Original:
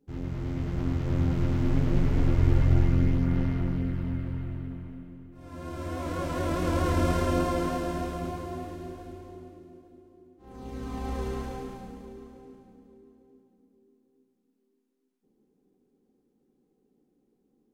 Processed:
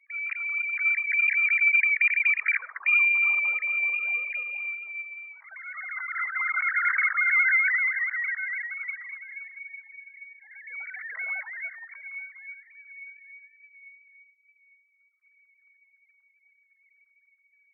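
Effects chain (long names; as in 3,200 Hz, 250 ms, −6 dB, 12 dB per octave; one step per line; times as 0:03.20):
three sine waves on the formant tracks
spectral peaks only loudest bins 32
voice inversion scrambler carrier 2,600 Hz
on a send at −22 dB: convolution reverb RT60 0.35 s, pre-delay 79 ms
on the sum: auto-filter high-pass sine 0.16 Hz 650–1,700 Hz
level −3.5 dB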